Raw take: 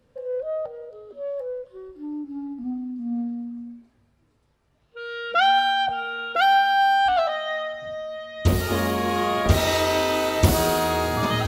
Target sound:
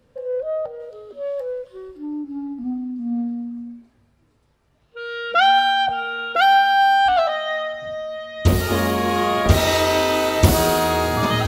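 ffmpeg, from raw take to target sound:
-filter_complex "[0:a]asplit=3[a][b][c];[a]afade=t=out:st=0.79:d=0.02[d];[b]adynamicequalizer=threshold=0.00355:dfrequency=1600:dqfactor=0.7:tfrequency=1600:tqfactor=0.7:attack=5:release=100:ratio=0.375:range=3.5:mode=boostabove:tftype=highshelf,afade=t=in:st=0.79:d=0.02,afade=t=out:st=1.97:d=0.02[e];[c]afade=t=in:st=1.97:d=0.02[f];[d][e][f]amix=inputs=3:normalize=0,volume=3.5dB"

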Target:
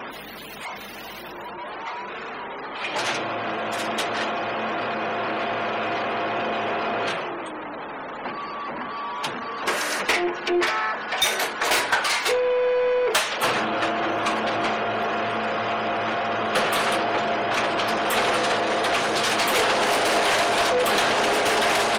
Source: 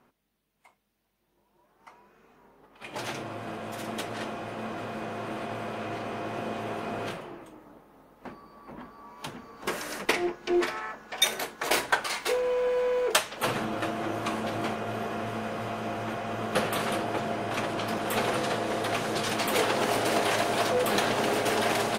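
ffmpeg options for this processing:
-filter_complex "[0:a]aeval=exprs='val(0)+0.5*0.0188*sgn(val(0))':c=same,afftfilt=real='re*gte(hypot(re,im),0.00794)':imag='im*gte(hypot(re,im),0.00794)':win_size=1024:overlap=0.75,asplit=2[a][b];[b]highpass=f=720:p=1,volume=19dB,asoftclip=type=tanh:threshold=-7.5dB[c];[a][c]amix=inputs=2:normalize=0,lowpass=f=7k:p=1,volume=-6dB,volume=-3.5dB"

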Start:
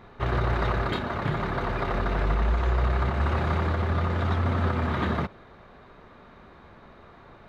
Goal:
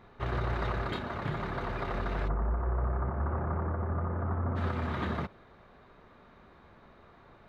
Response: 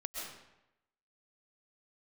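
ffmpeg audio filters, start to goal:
-filter_complex "[0:a]asplit=3[a][b][c];[a]afade=t=out:st=2.27:d=0.02[d];[b]lowpass=f=1.4k:w=0.5412,lowpass=f=1.4k:w=1.3066,afade=t=in:st=2.27:d=0.02,afade=t=out:st=4.55:d=0.02[e];[c]afade=t=in:st=4.55:d=0.02[f];[d][e][f]amix=inputs=3:normalize=0,volume=-6.5dB"

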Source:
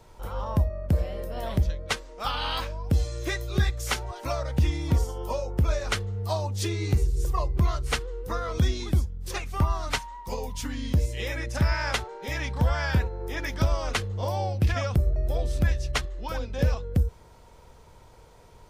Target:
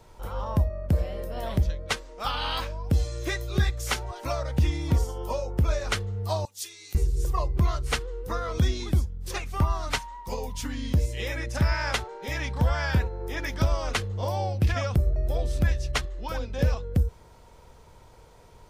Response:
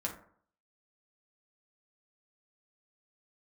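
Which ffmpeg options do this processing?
-filter_complex "[0:a]asettb=1/sr,asplit=3[a][b][c];[a]atrim=end=6.454[d];[b]atrim=start=6.45:end=6.95,asetpts=PTS-STARTPTS,afade=t=in:d=0.004:c=qsin,afade=t=out:st=0.496:d=0.004:c=qsin,aderivative[e];[c]atrim=start=6.946[f];[d][e]acrossfade=d=0.004:c1=hsin:c2=qsin[g];[g][f]acrossfade=d=0.004:c1=qsin:c2=hsin"

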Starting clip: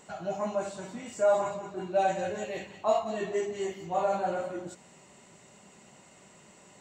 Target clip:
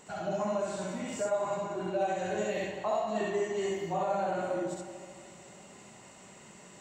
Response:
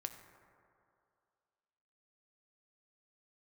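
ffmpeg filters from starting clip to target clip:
-filter_complex "[0:a]acompressor=threshold=-30dB:ratio=6,asplit=2[a][b];[1:a]atrim=start_sample=2205,adelay=66[c];[b][c]afir=irnorm=-1:irlink=0,volume=3dB[d];[a][d]amix=inputs=2:normalize=0"

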